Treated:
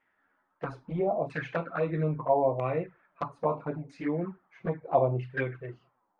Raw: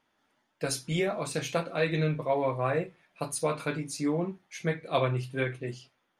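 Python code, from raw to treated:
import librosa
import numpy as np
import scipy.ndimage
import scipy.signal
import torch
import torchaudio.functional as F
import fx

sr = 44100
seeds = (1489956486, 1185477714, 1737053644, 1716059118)

y = fx.filter_lfo_lowpass(x, sr, shape='saw_down', hz=0.77, low_hz=680.0, high_hz=2000.0, q=3.6)
y = fx.env_flanger(y, sr, rest_ms=11.2, full_db=-22.5)
y = F.gain(torch.from_numpy(y), -1.0).numpy()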